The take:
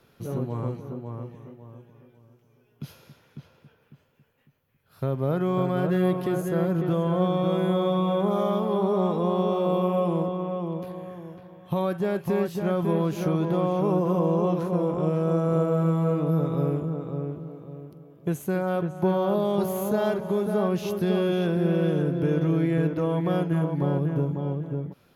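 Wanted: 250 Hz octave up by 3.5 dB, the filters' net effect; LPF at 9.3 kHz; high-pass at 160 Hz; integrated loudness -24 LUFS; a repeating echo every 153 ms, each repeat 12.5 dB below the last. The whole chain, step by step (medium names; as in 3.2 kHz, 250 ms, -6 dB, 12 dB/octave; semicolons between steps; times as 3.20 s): high-pass 160 Hz; low-pass 9.3 kHz; peaking EQ 250 Hz +8.5 dB; feedback delay 153 ms, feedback 24%, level -12.5 dB; trim -1.5 dB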